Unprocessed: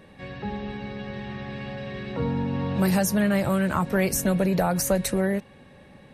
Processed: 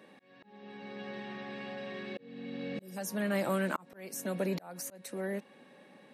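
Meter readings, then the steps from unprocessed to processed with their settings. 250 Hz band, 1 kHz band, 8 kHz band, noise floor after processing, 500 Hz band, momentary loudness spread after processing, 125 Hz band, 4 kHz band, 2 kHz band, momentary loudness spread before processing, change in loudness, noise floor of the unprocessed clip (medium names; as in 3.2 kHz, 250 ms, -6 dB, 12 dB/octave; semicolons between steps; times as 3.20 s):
-13.0 dB, -11.5 dB, -13.5 dB, -60 dBFS, -10.0 dB, 20 LU, -16.0 dB, -10.5 dB, -9.0 dB, 13 LU, -12.0 dB, -51 dBFS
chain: spectral replace 2.13–2.94 s, 590–4800 Hz before; high-pass 210 Hz 24 dB/octave; slow attack 644 ms; trim -5 dB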